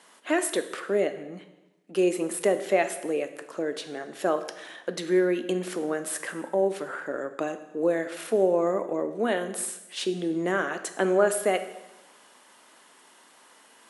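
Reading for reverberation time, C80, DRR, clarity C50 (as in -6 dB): 1.0 s, 13.5 dB, 9.0 dB, 11.5 dB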